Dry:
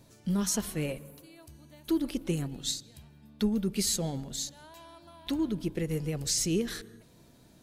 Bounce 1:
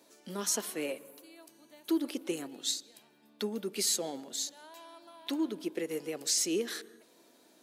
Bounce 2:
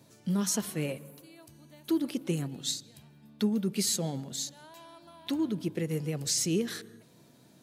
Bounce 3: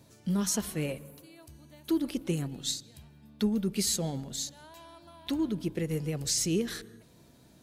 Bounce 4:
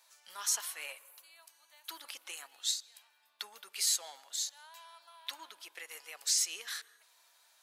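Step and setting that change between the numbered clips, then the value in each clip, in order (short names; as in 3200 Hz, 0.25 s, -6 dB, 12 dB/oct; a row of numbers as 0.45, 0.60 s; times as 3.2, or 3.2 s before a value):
HPF, cutoff: 290, 110, 42, 910 Hz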